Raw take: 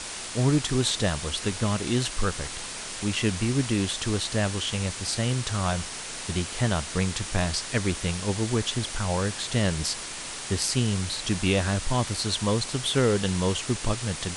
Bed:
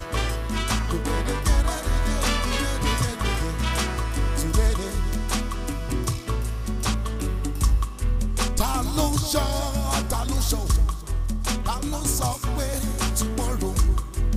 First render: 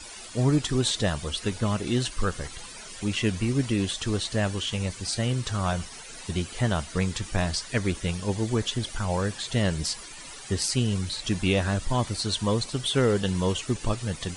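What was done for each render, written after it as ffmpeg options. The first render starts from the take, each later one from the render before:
-af "afftdn=nr=14:nf=-37"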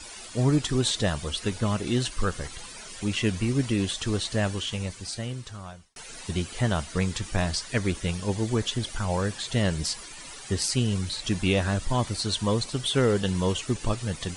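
-filter_complex "[0:a]asplit=2[s0][s1];[s0]atrim=end=5.96,asetpts=PTS-STARTPTS,afade=t=out:st=4.45:d=1.51[s2];[s1]atrim=start=5.96,asetpts=PTS-STARTPTS,afade=t=in:d=0.004:c=hsin[s3];[s2][s3]concat=n=2:v=0:a=1"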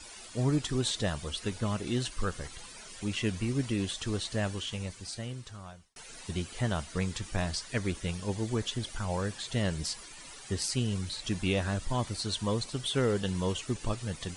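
-af "volume=0.531"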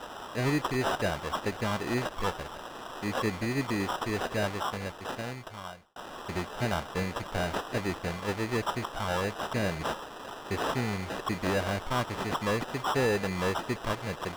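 -filter_complex "[0:a]acrusher=samples=20:mix=1:aa=0.000001,asplit=2[s0][s1];[s1]highpass=f=720:p=1,volume=5.62,asoftclip=type=tanh:threshold=0.141[s2];[s0][s2]amix=inputs=2:normalize=0,lowpass=f=3600:p=1,volume=0.501"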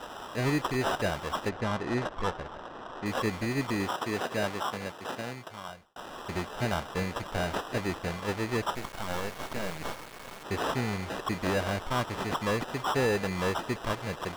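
-filter_complex "[0:a]asettb=1/sr,asplit=3[s0][s1][s2];[s0]atrim=end=1.494[s3];[s1]atrim=start=1.49:end=3.06,asetpts=PTS-STARTPTS,afade=t=in:d=0.004:c=qsin,afade=t=out:st=1.566:d=0.004:c=qsin,adynamicsmooth=sensitivity=3.5:basefreq=2200[s4];[s2]atrim=start=3.056[s5];[s3][s4]acrossfade=d=0.004:c1=hsin:c2=qsin[s6];[s6][s5]acrossfade=d=0.004:c1=qsin:c2=hsin,asettb=1/sr,asplit=3[s7][s8][s9];[s7]atrim=end=3.894[s10];[s8]atrim=start=3.89:end=5.69,asetpts=PTS-STARTPTS,afade=t=in:d=0.004:c=qsin,afade=t=out:st=1.796:d=0.004:c=qsin,highpass=120[s11];[s9]atrim=start=5.686[s12];[s10][s11]acrossfade=d=0.004:c1=hsin:c2=qsin[s13];[s13][s12]acrossfade=d=0.004:c1=qsin:c2=hsin,asettb=1/sr,asplit=3[s14][s15][s16];[s14]atrim=end=8.754[s17];[s15]atrim=start=8.75:end=10.44,asetpts=PTS-STARTPTS,afade=t=in:d=0.004:c=qsin,afade=t=out:st=1.686:d=0.004:c=qsin,acrusher=bits=4:dc=4:mix=0:aa=0.000001[s18];[s16]atrim=start=10.436[s19];[s17][s18]acrossfade=d=0.004:c1=hsin:c2=qsin[s20];[s20][s19]acrossfade=d=0.004:c1=qsin:c2=hsin"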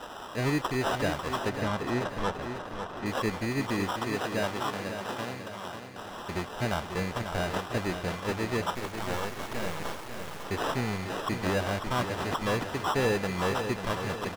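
-af "aecho=1:1:545|1090|1635|2180|2725|3270:0.398|0.203|0.104|0.0528|0.0269|0.0137"

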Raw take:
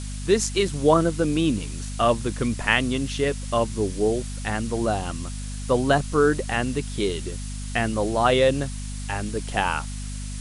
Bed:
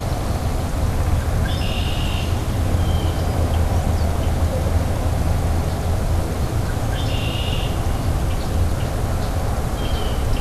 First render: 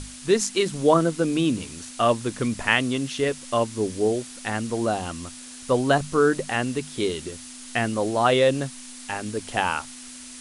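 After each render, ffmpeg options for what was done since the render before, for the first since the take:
-af "bandreject=f=50:t=h:w=6,bandreject=f=100:t=h:w=6,bandreject=f=150:t=h:w=6,bandreject=f=200:t=h:w=6"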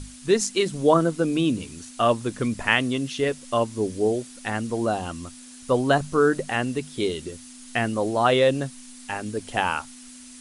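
-af "afftdn=nr=6:nf=-41"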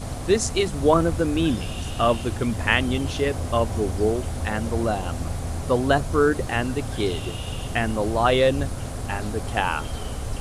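-filter_complex "[1:a]volume=0.335[s0];[0:a][s0]amix=inputs=2:normalize=0"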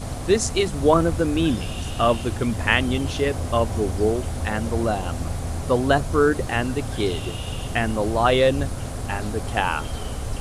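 -af "volume=1.12"

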